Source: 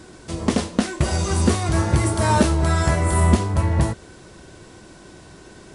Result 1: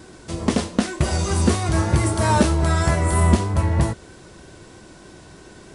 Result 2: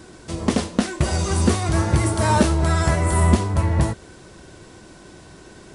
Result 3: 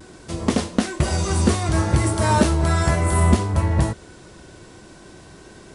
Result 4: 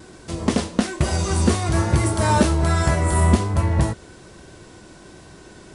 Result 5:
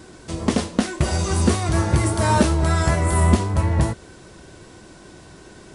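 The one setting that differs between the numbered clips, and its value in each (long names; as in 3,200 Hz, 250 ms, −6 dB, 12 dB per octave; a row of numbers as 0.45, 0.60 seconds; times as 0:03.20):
pitch vibrato, speed: 3.2, 16, 0.42, 1.2, 5.2 Hertz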